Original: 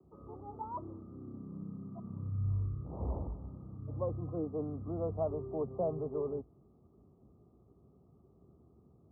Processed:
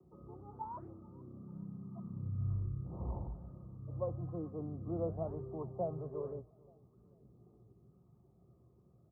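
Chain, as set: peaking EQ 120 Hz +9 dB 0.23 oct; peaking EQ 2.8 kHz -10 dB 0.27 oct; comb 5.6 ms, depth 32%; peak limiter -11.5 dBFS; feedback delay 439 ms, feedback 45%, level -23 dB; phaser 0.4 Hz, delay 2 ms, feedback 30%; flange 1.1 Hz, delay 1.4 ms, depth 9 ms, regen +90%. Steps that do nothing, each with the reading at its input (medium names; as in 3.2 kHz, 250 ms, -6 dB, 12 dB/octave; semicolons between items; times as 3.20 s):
peaking EQ 2.8 kHz: input has nothing above 810 Hz; peak limiter -11.5 dBFS: peak at its input -21.0 dBFS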